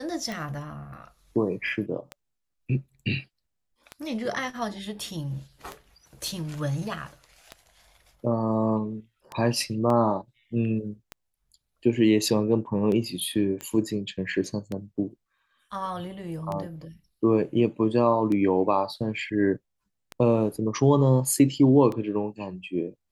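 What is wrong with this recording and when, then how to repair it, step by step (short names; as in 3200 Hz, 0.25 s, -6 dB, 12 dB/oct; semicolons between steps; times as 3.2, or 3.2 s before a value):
tick 33 1/3 rpm -19 dBFS
9.9 gap 2.4 ms
13.61 pop -20 dBFS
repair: de-click; interpolate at 9.9, 2.4 ms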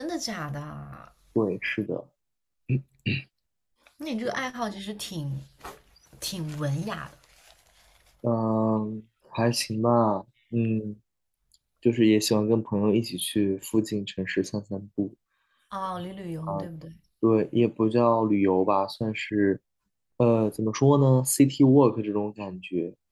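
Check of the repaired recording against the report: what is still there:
none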